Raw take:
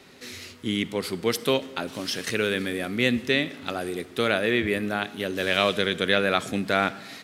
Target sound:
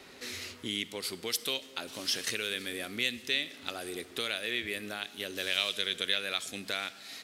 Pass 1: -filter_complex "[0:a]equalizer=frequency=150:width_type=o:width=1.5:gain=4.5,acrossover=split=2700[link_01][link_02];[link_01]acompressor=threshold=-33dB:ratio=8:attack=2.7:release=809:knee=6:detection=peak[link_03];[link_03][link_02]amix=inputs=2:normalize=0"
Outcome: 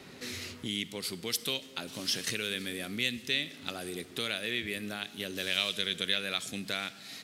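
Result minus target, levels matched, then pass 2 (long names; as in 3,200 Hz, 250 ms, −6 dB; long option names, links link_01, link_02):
125 Hz band +6.5 dB
-filter_complex "[0:a]equalizer=frequency=150:width_type=o:width=1.5:gain=-7,acrossover=split=2700[link_01][link_02];[link_01]acompressor=threshold=-33dB:ratio=8:attack=2.7:release=809:knee=6:detection=peak[link_03];[link_03][link_02]amix=inputs=2:normalize=0"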